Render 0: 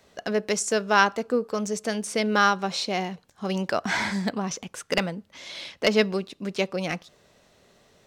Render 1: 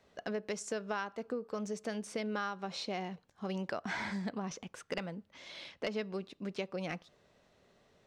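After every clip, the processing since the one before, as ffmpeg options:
-af "lowpass=f=3400:p=1,acompressor=threshold=0.0501:ratio=6,volume=0.422"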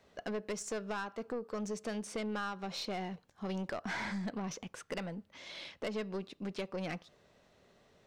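-af "aeval=exprs='(tanh(44.7*val(0)+0.2)-tanh(0.2))/44.7':c=same,volume=1.26"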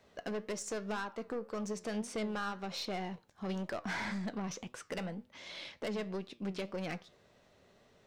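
-af "volume=47.3,asoftclip=hard,volume=0.0211,flanger=delay=7.8:depth=3.6:regen=81:speed=1.9:shape=triangular,volume=1.78"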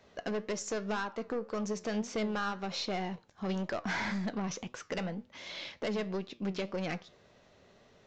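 -af "aresample=16000,aresample=44100,volume=1.5"

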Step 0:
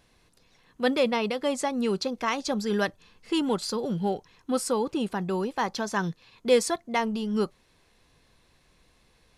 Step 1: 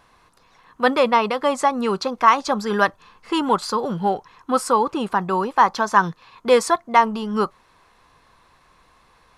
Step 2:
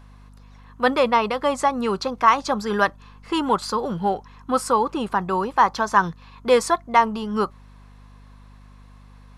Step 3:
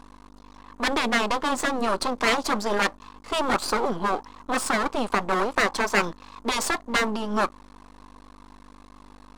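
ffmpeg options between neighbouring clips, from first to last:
-af "equalizer=f=1100:t=o:w=1.2:g=15,volume=1.26"
-af "aeval=exprs='val(0)+0.00631*(sin(2*PI*50*n/s)+sin(2*PI*2*50*n/s)/2+sin(2*PI*3*50*n/s)/3+sin(2*PI*4*50*n/s)/4+sin(2*PI*5*50*n/s)/5)':c=same,volume=0.841"
-af "aeval=exprs='max(val(0),0)':c=same,equalizer=f=125:t=o:w=1:g=-11,equalizer=f=250:t=o:w=1:g=9,equalizer=f=500:t=o:w=1:g=4,equalizer=f=1000:t=o:w=1:g=9,equalizer=f=4000:t=o:w=1:g=4,equalizer=f=8000:t=o:w=1:g=7,afftfilt=real='re*lt(hypot(re,im),0.708)':imag='im*lt(hypot(re,im),0.708)':win_size=1024:overlap=0.75"

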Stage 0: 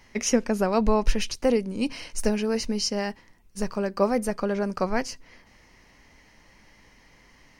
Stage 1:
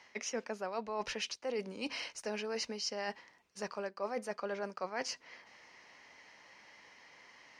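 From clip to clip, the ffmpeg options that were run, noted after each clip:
-filter_complex "[0:a]highpass=120,acrossover=split=450 6900:gain=0.2 1 0.112[s0][s1][s2];[s0][s1][s2]amix=inputs=3:normalize=0,areverse,acompressor=threshold=0.0178:ratio=6,areverse"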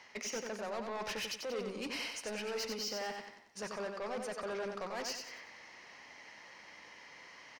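-filter_complex "[0:a]asoftclip=type=tanh:threshold=0.0119,asplit=2[s0][s1];[s1]aecho=0:1:92|184|276|368|460:0.562|0.225|0.09|0.036|0.0144[s2];[s0][s2]amix=inputs=2:normalize=0,volume=1.41"

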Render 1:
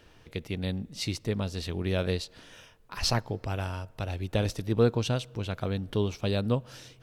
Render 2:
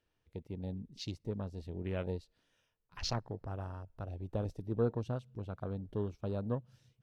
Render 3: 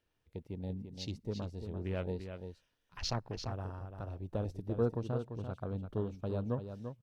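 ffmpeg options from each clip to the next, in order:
-af "afwtdn=0.0158,volume=0.376"
-af "aecho=1:1:342:0.398"

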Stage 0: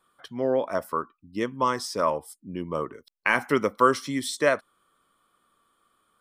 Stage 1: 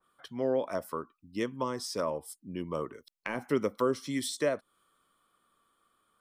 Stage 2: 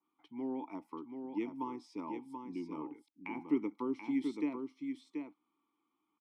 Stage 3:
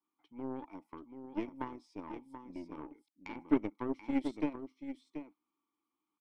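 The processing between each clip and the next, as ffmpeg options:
-filter_complex "[0:a]acrossover=split=660[s0][s1];[s1]acompressor=threshold=0.02:ratio=6[s2];[s0][s2]amix=inputs=2:normalize=0,adynamicequalizer=threshold=0.00562:dfrequency=2300:dqfactor=0.7:tfrequency=2300:tqfactor=0.7:attack=5:release=100:ratio=0.375:range=2.5:mode=boostabove:tftype=highshelf,volume=0.631"
-filter_complex "[0:a]asplit=3[s0][s1][s2];[s0]bandpass=f=300:t=q:w=8,volume=1[s3];[s1]bandpass=f=870:t=q:w=8,volume=0.501[s4];[s2]bandpass=f=2240:t=q:w=8,volume=0.355[s5];[s3][s4][s5]amix=inputs=3:normalize=0,aecho=1:1:732:0.501,volume=1.78"
-af "aeval=exprs='0.1*(cos(1*acos(clip(val(0)/0.1,-1,1)))-cos(1*PI/2))+0.0141*(cos(2*acos(clip(val(0)/0.1,-1,1)))-cos(2*PI/2))+0.0112*(cos(3*acos(clip(val(0)/0.1,-1,1)))-cos(3*PI/2))+0.0126*(cos(4*acos(clip(val(0)/0.1,-1,1)))-cos(4*PI/2))+0.00501*(cos(7*acos(clip(val(0)/0.1,-1,1)))-cos(7*PI/2))':c=same,volume=1.58"

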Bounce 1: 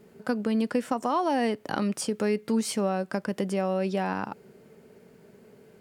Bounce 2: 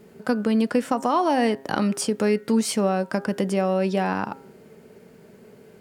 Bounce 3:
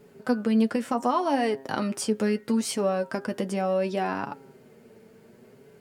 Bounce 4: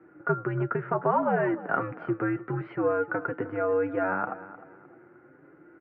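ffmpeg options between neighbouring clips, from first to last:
-af "bandreject=f=134.6:t=h:w=4,bandreject=f=269.2:t=h:w=4,bandreject=f=403.8:t=h:w=4,bandreject=f=538.4:t=h:w=4,bandreject=f=673:t=h:w=4,bandreject=f=807.6:t=h:w=4,bandreject=f=942.2:t=h:w=4,bandreject=f=1076.8:t=h:w=4,bandreject=f=1211.4:t=h:w=4,bandreject=f=1346:t=h:w=4,bandreject=f=1480.6:t=h:w=4,bandreject=f=1615.2:t=h:w=4,bandreject=f=1749.8:t=h:w=4,bandreject=f=1884.4:t=h:w=4,volume=1.78"
-af "flanger=delay=6.9:depth=2.4:regen=35:speed=0.69:shape=triangular"
-af "equalizer=f=1500:w=5.9:g=10.5,aecho=1:1:306|612|918:0.15|0.0479|0.0153,highpass=f=290:t=q:w=0.5412,highpass=f=290:t=q:w=1.307,lowpass=f=2100:t=q:w=0.5176,lowpass=f=2100:t=q:w=0.7071,lowpass=f=2100:t=q:w=1.932,afreqshift=-90"

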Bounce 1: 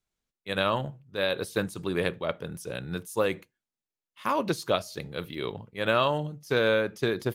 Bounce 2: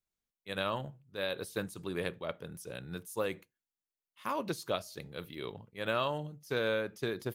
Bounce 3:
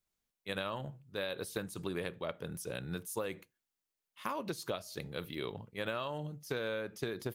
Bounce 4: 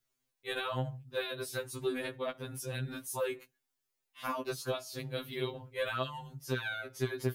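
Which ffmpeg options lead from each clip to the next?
-af "highshelf=f=9800:g=6.5,volume=0.398"
-af "acompressor=threshold=0.0126:ratio=6,volume=1.58"
-af "afftfilt=real='re*2.45*eq(mod(b,6),0)':imag='im*2.45*eq(mod(b,6),0)':win_size=2048:overlap=0.75,volume=1.78"

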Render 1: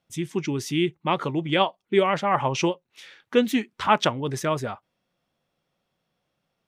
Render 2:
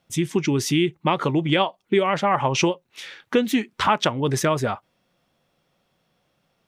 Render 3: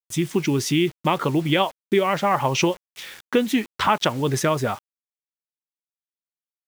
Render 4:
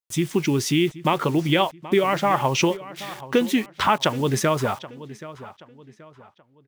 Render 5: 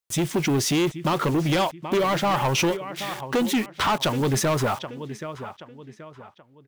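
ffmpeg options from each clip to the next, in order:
-af "acompressor=threshold=0.0562:ratio=4,volume=2.51"
-af "acrusher=bits=6:mix=0:aa=0.000001"
-filter_complex "[0:a]asplit=2[s0][s1];[s1]adelay=778,lowpass=f=4200:p=1,volume=0.15,asplit=2[s2][s3];[s3]adelay=778,lowpass=f=4200:p=1,volume=0.37,asplit=2[s4][s5];[s5]adelay=778,lowpass=f=4200:p=1,volume=0.37[s6];[s0][s2][s4][s6]amix=inputs=4:normalize=0"
-af "asoftclip=type=tanh:threshold=0.0794,volume=1.58"

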